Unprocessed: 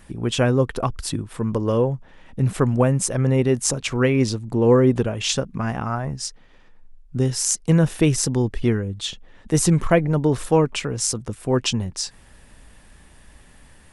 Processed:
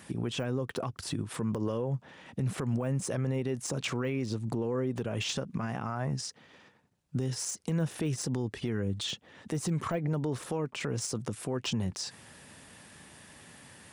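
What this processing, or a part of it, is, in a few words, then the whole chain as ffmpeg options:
broadcast voice chain: -af "highpass=frequency=100:width=0.5412,highpass=frequency=100:width=1.3066,deesser=0.85,acompressor=threshold=-21dB:ratio=6,equalizer=frequency=5700:width_type=o:width=2.1:gain=3,alimiter=limit=-22.5dB:level=0:latency=1:release=110"

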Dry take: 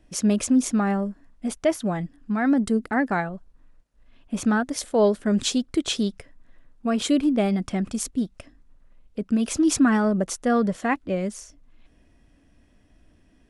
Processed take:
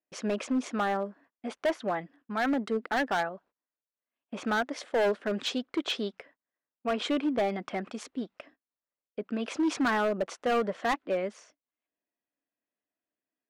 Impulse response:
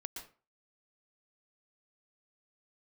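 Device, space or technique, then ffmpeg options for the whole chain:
walkie-talkie: -af "highpass=450,lowpass=2800,asoftclip=type=hard:threshold=-23.5dB,agate=range=-27dB:threshold=-58dB:ratio=16:detection=peak,volume=1dB"

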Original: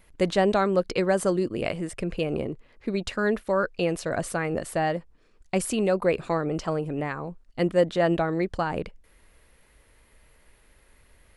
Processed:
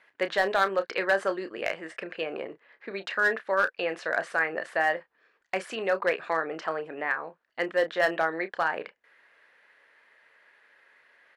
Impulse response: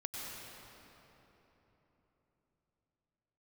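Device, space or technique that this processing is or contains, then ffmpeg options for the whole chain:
megaphone: -filter_complex "[0:a]highpass=570,lowpass=3500,equalizer=frequency=1700:width_type=o:width=0.47:gain=10,asoftclip=type=hard:threshold=-16dB,asplit=2[link_01][link_02];[link_02]adelay=31,volume=-11dB[link_03];[link_01][link_03]amix=inputs=2:normalize=0"

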